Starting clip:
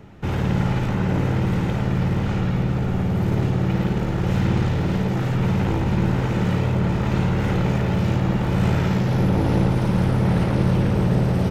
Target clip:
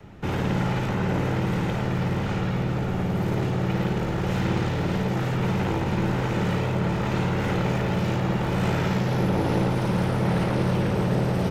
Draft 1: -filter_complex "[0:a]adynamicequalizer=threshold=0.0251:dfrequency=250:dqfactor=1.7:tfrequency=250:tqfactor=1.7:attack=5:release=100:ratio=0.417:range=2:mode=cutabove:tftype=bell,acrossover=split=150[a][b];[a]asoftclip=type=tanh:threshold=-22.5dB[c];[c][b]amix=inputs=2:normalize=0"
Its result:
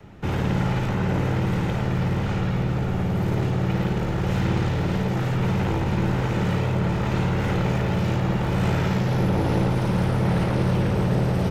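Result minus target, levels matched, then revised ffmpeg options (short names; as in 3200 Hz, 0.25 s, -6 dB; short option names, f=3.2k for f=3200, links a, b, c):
soft clip: distortion -7 dB
-filter_complex "[0:a]adynamicequalizer=threshold=0.0251:dfrequency=250:dqfactor=1.7:tfrequency=250:tqfactor=1.7:attack=5:release=100:ratio=0.417:range=2:mode=cutabove:tftype=bell,acrossover=split=150[a][b];[a]asoftclip=type=tanh:threshold=-30.5dB[c];[c][b]amix=inputs=2:normalize=0"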